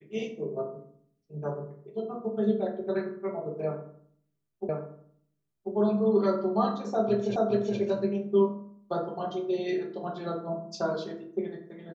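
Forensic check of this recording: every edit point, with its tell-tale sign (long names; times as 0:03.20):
0:04.69: the same again, the last 1.04 s
0:07.36: the same again, the last 0.42 s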